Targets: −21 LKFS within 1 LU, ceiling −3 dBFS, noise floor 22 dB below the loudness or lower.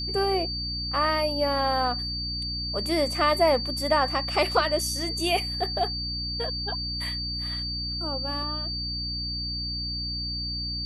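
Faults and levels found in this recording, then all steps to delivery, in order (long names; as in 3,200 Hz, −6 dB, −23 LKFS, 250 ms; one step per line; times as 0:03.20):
mains hum 60 Hz; hum harmonics up to 300 Hz; level of the hum −33 dBFS; interfering tone 4,600 Hz; level of the tone −30 dBFS; integrated loudness −26.5 LKFS; sample peak −9.0 dBFS; target loudness −21.0 LKFS
→ hum removal 60 Hz, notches 5
notch filter 4,600 Hz, Q 30
level +5.5 dB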